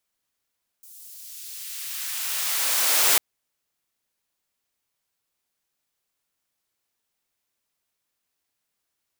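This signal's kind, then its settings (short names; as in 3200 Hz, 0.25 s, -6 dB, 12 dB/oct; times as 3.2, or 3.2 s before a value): swept filtered noise white, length 2.35 s highpass, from 8200 Hz, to 350 Hz, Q 0.71, exponential, gain ramp +28 dB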